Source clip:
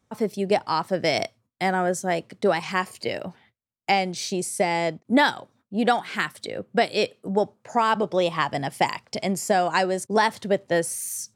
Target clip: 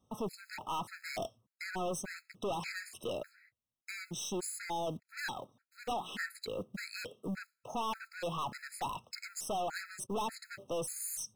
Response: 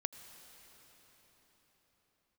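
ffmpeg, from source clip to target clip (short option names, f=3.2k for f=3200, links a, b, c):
-af "acrusher=bits=5:mode=log:mix=0:aa=0.000001,aeval=exprs='(tanh(31.6*val(0)+0.1)-tanh(0.1))/31.6':c=same,afftfilt=real='re*gt(sin(2*PI*1.7*pts/sr)*(1-2*mod(floor(b*sr/1024/1300),2)),0)':imag='im*gt(sin(2*PI*1.7*pts/sr)*(1-2*mod(floor(b*sr/1024/1300),2)),0)':win_size=1024:overlap=0.75,volume=-2.5dB"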